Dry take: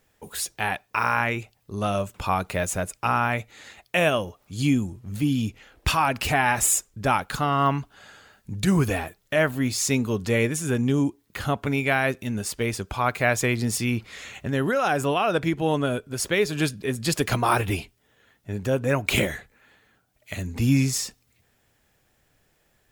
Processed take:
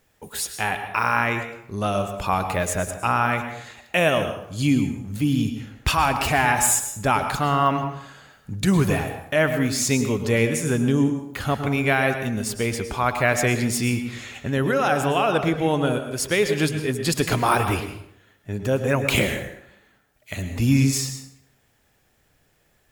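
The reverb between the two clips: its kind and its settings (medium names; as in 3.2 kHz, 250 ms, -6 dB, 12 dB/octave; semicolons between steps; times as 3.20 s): plate-style reverb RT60 0.73 s, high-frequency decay 0.7×, pre-delay 95 ms, DRR 7.5 dB; trim +1.5 dB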